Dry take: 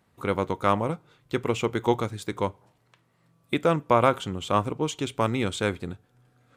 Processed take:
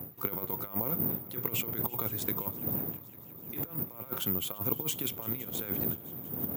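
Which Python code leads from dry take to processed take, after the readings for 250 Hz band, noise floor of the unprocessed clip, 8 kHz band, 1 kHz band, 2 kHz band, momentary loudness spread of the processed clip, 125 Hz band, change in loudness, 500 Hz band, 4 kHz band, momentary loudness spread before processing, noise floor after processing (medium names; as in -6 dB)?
-9.0 dB, -67 dBFS, 0.0 dB, -17.5 dB, -13.0 dB, 7 LU, -8.5 dB, -5.5 dB, -15.5 dB, -6.0 dB, 10 LU, -48 dBFS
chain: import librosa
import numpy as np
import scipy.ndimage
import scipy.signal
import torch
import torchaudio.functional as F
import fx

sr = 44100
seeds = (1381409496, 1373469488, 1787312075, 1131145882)

y = fx.dmg_wind(x, sr, seeds[0], corner_hz=260.0, level_db=-35.0)
y = fx.over_compress(y, sr, threshold_db=-29.0, ratio=-0.5)
y = scipy.signal.sosfilt(scipy.signal.butter(4, 100.0, 'highpass', fs=sr, output='sos'), y)
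y = fx.echo_heads(y, sr, ms=170, heads='second and third', feedback_pct=68, wet_db=-22.0)
y = (np.kron(y[::3], np.eye(3)[0]) * 3)[:len(y)]
y = y * 10.0 ** (-7.5 / 20.0)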